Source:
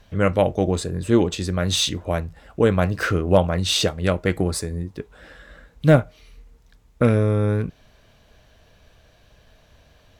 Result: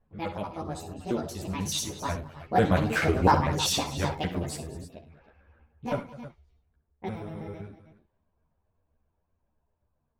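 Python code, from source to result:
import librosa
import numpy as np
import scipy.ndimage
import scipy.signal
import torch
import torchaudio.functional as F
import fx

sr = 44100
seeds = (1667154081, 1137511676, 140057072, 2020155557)

p1 = fx.pitch_trill(x, sr, semitones=8.0, every_ms=63)
p2 = fx.doppler_pass(p1, sr, speed_mps=10, closest_m=7.2, pass_at_s=3.03)
p3 = fx.env_lowpass(p2, sr, base_hz=1000.0, full_db=-31.5)
p4 = p3 + fx.echo_multitap(p3, sr, ms=(56, 68, 103, 206, 316), db=(-13.5, -12.5, -19.5, -18.0, -15.0), dry=0)
y = fx.ensemble(p4, sr)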